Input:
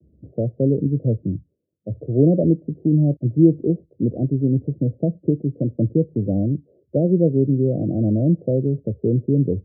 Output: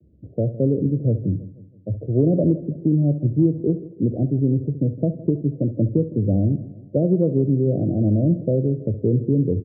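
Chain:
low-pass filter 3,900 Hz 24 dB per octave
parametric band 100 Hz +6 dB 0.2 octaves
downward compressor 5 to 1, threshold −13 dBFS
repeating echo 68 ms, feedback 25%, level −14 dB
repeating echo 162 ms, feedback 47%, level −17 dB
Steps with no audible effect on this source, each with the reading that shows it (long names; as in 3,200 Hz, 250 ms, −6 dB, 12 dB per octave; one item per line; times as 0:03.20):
low-pass filter 3,900 Hz: nothing at its input above 680 Hz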